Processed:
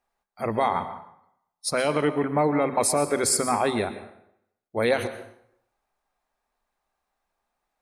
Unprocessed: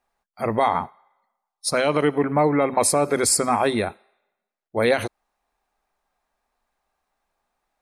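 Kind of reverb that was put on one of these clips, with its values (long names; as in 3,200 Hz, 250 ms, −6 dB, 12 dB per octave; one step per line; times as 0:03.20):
dense smooth reverb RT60 0.72 s, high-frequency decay 0.75×, pre-delay 105 ms, DRR 11.5 dB
level −3.5 dB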